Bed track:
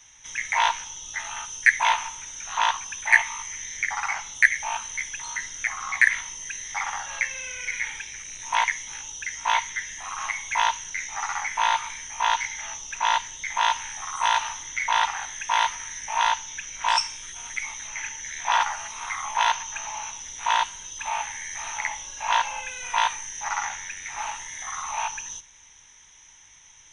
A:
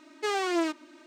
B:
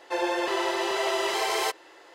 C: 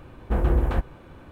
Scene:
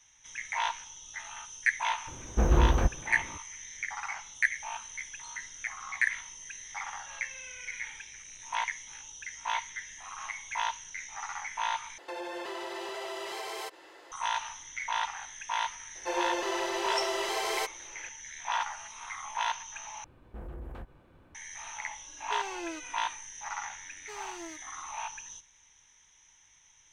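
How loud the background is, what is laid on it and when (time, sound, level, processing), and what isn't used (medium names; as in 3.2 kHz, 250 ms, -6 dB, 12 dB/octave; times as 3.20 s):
bed track -9.5 dB
2.07 s: add C -1.5 dB
11.98 s: replace with B -1.5 dB + compression 4:1, threshold -35 dBFS
15.95 s: add B -5 dB
20.04 s: replace with C -13 dB + peak limiter -22 dBFS
22.08 s: add A -12 dB
23.85 s: add A -17.5 dB + treble shelf 7 kHz +9.5 dB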